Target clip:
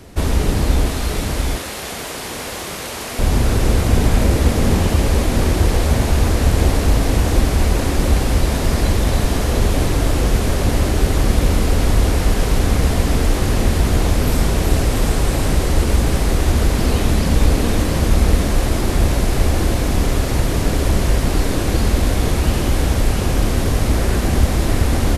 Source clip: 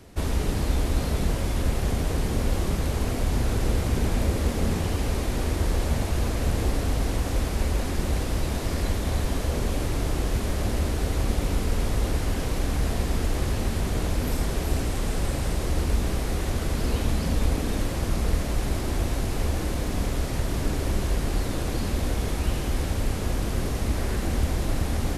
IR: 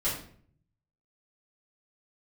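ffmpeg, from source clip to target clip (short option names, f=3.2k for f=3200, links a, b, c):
-filter_complex "[0:a]asettb=1/sr,asplit=3[a][b][c];[a]atrim=end=0.884[d];[b]atrim=start=0.88:end=3.19,asetpts=PTS-STARTPTS,afade=t=in:d=0.004:c=qsin,afade=t=out:st=2.306:d=0.004:c=qsin,highpass=f=1.1k:p=1[e];[c]atrim=start=3.186[f];[d][e]acrossfade=d=0.004:c1=hsin:c2=qsin[g];[g][f]acrossfade=d=0.004:c1=qsin:c2=hsin,aecho=1:1:698:0.562,volume=8.5dB"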